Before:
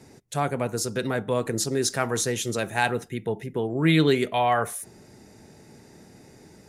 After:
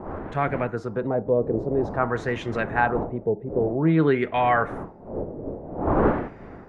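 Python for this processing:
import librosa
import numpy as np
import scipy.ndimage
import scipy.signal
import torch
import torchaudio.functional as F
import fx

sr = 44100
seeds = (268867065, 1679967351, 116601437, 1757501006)

y = fx.dmg_wind(x, sr, seeds[0], corner_hz=470.0, level_db=-32.0)
y = fx.wow_flutter(y, sr, seeds[1], rate_hz=2.1, depth_cents=26.0)
y = fx.filter_lfo_lowpass(y, sr, shape='sine', hz=0.51, low_hz=510.0, high_hz=2000.0, q=1.8)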